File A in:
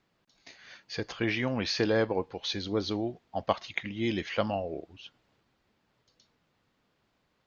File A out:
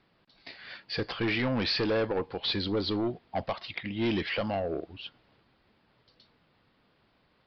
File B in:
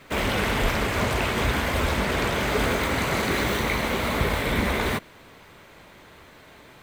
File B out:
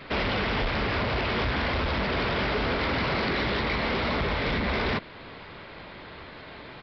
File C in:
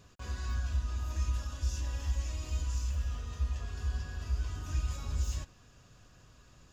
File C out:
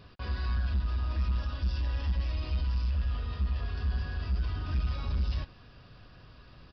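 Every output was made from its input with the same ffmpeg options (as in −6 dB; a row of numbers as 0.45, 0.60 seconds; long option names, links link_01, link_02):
-af "alimiter=limit=-18dB:level=0:latency=1:release=306,aresample=11025,asoftclip=type=tanh:threshold=-29dB,aresample=44100,volume=6dB"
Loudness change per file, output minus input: +1.0, −2.5, +3.5 LU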